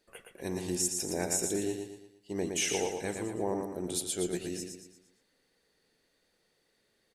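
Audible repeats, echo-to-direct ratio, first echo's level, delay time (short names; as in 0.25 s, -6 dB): 4, -4.0 dB, -5.0 dB, 0.116 s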